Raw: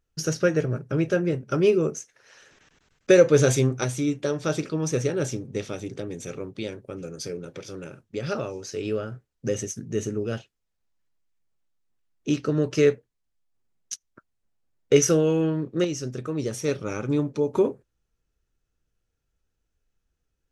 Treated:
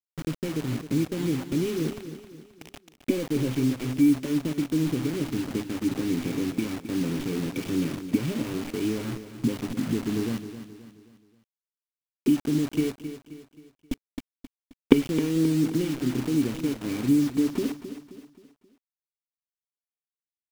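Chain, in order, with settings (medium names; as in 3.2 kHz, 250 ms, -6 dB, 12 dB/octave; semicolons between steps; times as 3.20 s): tracing distortion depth 0.24 ms; recorder AGC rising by 30 dB/s; level-controlled noise filter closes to 2.3 kHz, open at -14.5 dBFS; in parallel at -8 dB: fuzz box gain 26 dB, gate -25 dBFS; on the sum: cascade formant filter i; word length cut 6-bit, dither none; on a send: feedback delay 265 ms, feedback 43%, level -11.5 dB; on the sum: trim -1 dB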